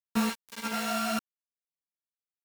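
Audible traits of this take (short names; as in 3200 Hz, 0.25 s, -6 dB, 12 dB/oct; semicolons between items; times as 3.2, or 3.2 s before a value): a buzz of ramps at a fixed pitch in blocks of 32 samples; tremolo saw up 0.85 Hz, depth 95%; a quantiser's noise floor 6-bit, dither none; a shimmering, thickened sound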